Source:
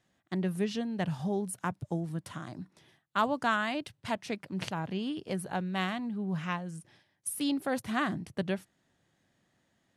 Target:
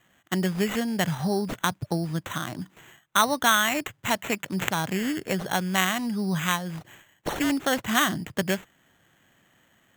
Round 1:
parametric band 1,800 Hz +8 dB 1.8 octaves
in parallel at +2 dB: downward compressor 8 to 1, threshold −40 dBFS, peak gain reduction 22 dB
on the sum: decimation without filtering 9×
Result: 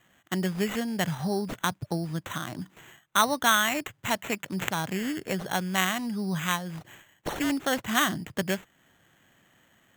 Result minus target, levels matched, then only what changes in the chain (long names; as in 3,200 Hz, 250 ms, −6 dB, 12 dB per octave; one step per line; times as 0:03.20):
downward compressor: peak gain reduction +8.5 dB
change: downward compressor 8 to 1, threshold −30.5 dBFS, peak gain reduction 13.5 dB